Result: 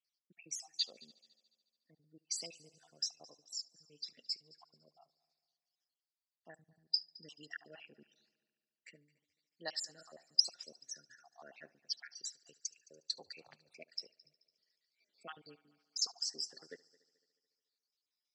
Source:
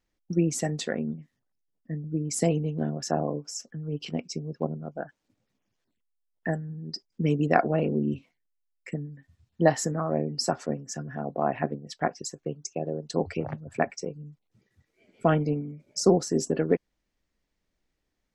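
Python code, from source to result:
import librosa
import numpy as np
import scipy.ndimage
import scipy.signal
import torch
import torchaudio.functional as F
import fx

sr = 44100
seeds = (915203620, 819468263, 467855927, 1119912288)

y = fx.spec_dropout(x, sr, seeds[0], share_pct=53)
y = fx.bandpass_q(y, sr, hz=4700.0, q=6.5)
y = fx.transient(y, sr, attack_db=-3, sustain_db=7, at=(6.51, 7.1))
y = fx.echo_heads(y, sr, ms=72, heads='first and third', feedback_pct=53, wet_db=-24)
y = F.gain(torch.from_numpy(y), 9.0).numpy()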